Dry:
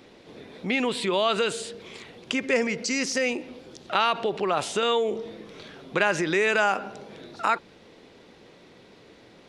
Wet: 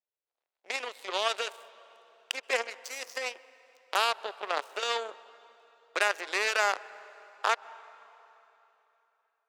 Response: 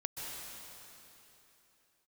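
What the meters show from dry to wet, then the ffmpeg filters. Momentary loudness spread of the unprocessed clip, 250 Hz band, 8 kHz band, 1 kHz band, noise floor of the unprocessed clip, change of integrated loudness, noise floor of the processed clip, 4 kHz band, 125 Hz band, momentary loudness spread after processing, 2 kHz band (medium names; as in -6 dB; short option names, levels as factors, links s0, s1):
20 LU, -24.0 dB, -5.5 dB, -5.0 dB, -53 dBFS, -5.5 dB, under -85 dBFS, -3.5 dB, under -35 dB, 19 LU, -4.0 dB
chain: -filter_complex "[0:a]aeval=exprs='0.447*(cos(1*acos(clip(val(0)/0.447,-1,1)))-cos(1*PI/2))+0.0158*(cos(4*acos(clip(val(0)/0.447,-1,1)))-cos(4*PI/2))+0.0501*(cos(5*acos(clip(val(0)/0.447,-1,1)))-cos(5*PI/2))+0.1*(cos(7*acos(clip(val(0)/0.447,-1,1)))-cos(7*PI/2))':c=same,highpass=f=450:w=0.5412,highpass=f=450:w=1.3066,asplit=2[s0][s1];[1:a]atrim=start_sample=2205,highshelf=f=3300:g=-11[s2];[s1][s2]afir=irnorm=-1:irlink=0,volume=0.158[s3];[s0][s3]amix=inputs=2:normalize=0,volume=0.631"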